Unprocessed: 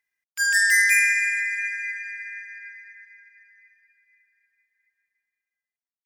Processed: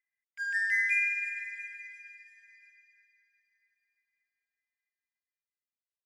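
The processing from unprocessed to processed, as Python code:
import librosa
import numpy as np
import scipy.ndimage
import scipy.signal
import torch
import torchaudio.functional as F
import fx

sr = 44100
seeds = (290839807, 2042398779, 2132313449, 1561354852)

p1 = fx.filter_sweep_bandpass(x, sr, from_hz=2000.0, to_hz=4200.0, start_s=0.5, end_s=2.52, q=3.2)
p2 = p1 + fx.echo_feedback(p1, sr, ms=343, feedback_pct=52, wet_db=-12.5, dry=0)
y = p2 * 10.0 ** (-6.5 / 20.0)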